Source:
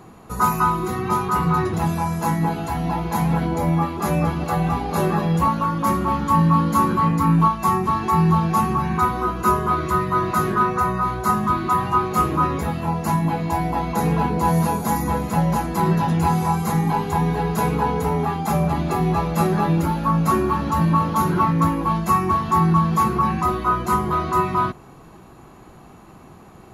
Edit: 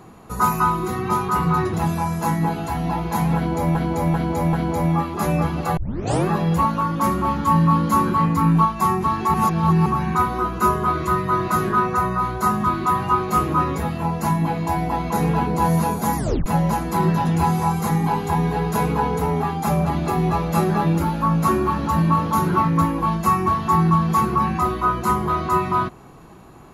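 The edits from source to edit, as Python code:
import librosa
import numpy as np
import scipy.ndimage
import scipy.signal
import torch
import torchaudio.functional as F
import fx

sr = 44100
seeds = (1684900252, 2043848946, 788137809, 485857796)

y = fx.edit(x, sr, fx.repeat(start_s=3.36, length_s=0.39, count=4),
    fx.tape_start(start_s=4.6, length_s=0.49),
    fx.reverse_span(start_s=8.17, length_s=0.52),
    fx.tape_stop(start_s=15.0, length_s=0.29), tone=tone)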